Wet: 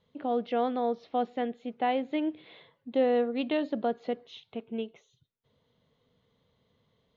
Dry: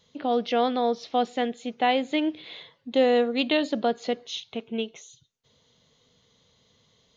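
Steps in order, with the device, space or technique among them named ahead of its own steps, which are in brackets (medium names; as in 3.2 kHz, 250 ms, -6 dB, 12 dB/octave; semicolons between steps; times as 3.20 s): phone in a pocket (low-pass 3.7 kHz 12 dB/octave; treble shelf 2.4 kHz -10.5 dB); trim -4 dB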